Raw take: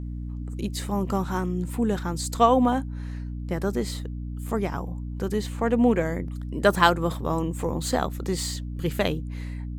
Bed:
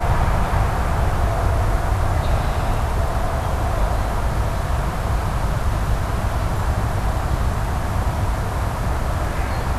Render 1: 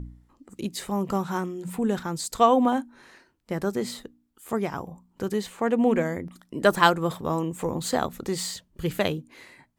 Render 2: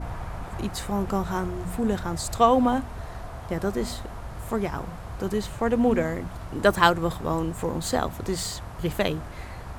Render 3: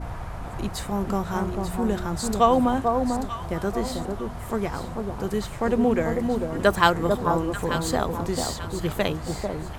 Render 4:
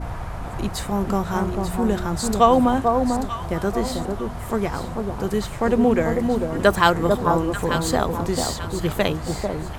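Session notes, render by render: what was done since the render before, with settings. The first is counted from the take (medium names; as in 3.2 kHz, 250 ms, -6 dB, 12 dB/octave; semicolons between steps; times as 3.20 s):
de-hum 60 Hz, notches 5
add bed -16 dB
echo whose repeats swap between lows and highs 444 ms, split 1.1 kHz, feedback 55%, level -4 dB
trim +3.5 dB; peak limiter -2 dBFS, peak gain reduction 2.5 dB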